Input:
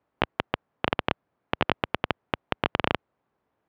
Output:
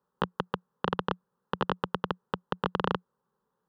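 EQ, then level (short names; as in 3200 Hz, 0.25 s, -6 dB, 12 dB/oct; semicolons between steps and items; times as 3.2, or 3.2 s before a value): bell 180 Hz +5.5 dB 0.2 oct; fixed phaser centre 450 Hz, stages 8; 0.0 dB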